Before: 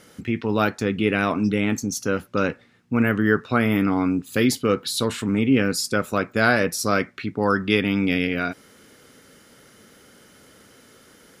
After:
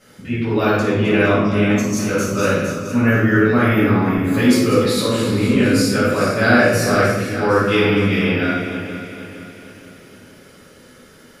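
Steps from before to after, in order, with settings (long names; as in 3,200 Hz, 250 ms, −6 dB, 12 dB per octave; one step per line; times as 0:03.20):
feedback delay that plays each chunk backwards 231 ms, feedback 67%, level −10 dB
0:02.18–0:02.94: high-shelf EQ 3,800 Hz +10 dB
rectangular room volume 440 cubic metres, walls mixed, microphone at 6.4 metres
level −9.5 dB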